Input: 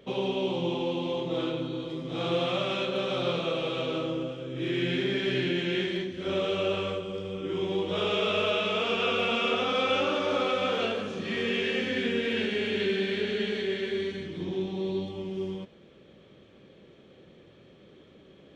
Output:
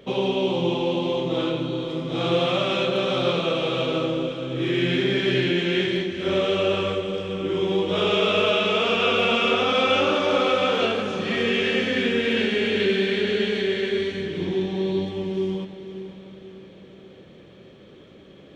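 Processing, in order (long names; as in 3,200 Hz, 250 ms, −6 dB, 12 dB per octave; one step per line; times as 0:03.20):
feedback delay with all-pass diffusion 507 ms, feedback 45%, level −12 dB
level +6 dB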